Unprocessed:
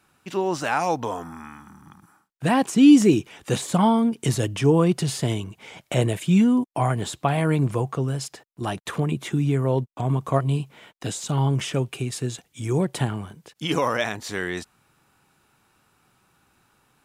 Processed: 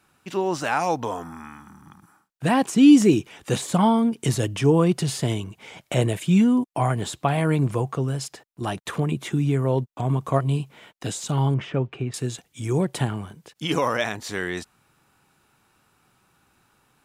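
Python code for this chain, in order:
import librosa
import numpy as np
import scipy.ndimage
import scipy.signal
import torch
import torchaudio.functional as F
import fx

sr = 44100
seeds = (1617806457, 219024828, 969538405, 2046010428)

y = fx.lowpass(x, sr, hz=2100.0, slope=12, at=(11.54, 12.14))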